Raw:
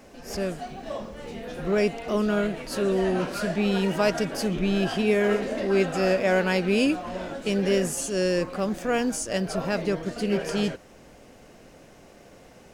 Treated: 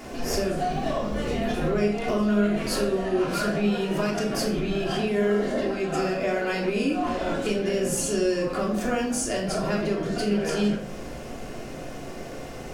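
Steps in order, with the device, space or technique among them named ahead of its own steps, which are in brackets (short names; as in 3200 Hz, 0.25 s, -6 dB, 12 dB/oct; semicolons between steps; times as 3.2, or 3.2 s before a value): 5.08–5.62 notch 2500 Hz, Q 6.1; serial compression, leveller first (compressor 2:1, threshold -25 dBFS, peak gain reduction 5 dB; compressor 5:1, threshold -36 dBFS, peak gain reduction 13 dB); shoebox room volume 1000 m³, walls furnished, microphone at 3.2 m; gain +8 dB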